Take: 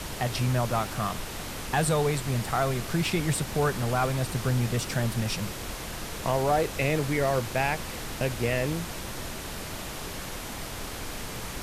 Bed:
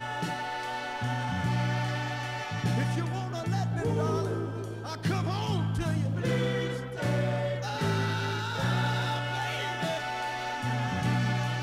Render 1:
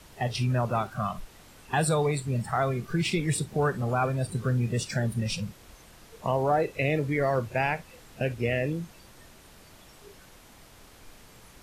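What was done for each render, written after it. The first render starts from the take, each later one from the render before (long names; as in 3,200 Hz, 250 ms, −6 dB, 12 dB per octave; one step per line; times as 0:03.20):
noise reduction from a noise print 16 dB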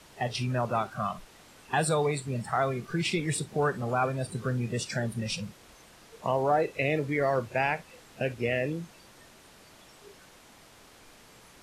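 Bessel low-pass filter 11,000 Hz, order 2
low-shelf EQ 110 Hz −11.5 dB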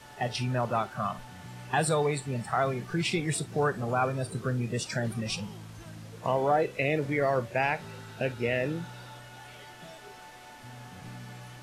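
mix in bed −16.5 dB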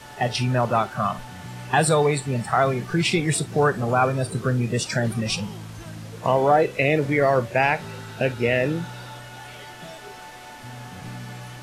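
level +7.5 dB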